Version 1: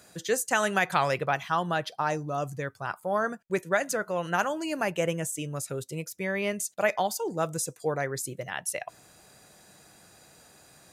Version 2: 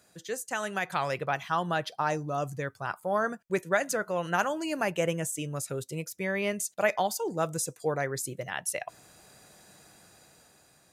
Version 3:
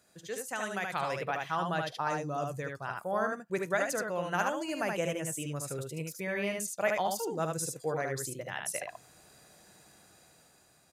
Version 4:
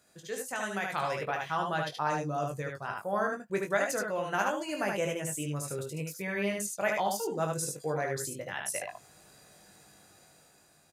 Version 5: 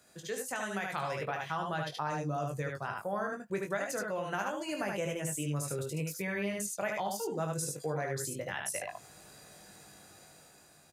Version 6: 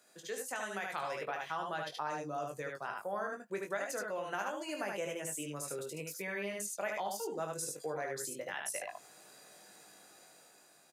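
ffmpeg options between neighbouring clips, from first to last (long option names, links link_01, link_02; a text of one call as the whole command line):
ffmpeg -i in.wav -af "dynaudnorm=framelen=340:gausssize=7:maxgain=8dB,volume=-8dB" out.wav
ffmpeg -i in.wav -af "aecho=1:1:51|75:0.178|0.668,volume=-4.5dB" out.wav
ffmpeg -i in.wav -filter_complex "[0:a]asplit=2[link_01][link_02];[link_02]adelay=20,volume=-6dB[link_03];[link_01][link_03]amix=inputs=2:normalize=0" out.wav
ffmpeg -i in.wav -filter_complex "[0:a]acrossover=split=140[link_01][link_02];[link_02]acompressor=threshold=-38dB:ratio=2.5[link_03];[link_01][link_03]amix=inputs=2:normalize=0,volume=3dB" out.wav
ffmpeg -i in.wav -af "highpass=280,volume=-2.5dB" out.wav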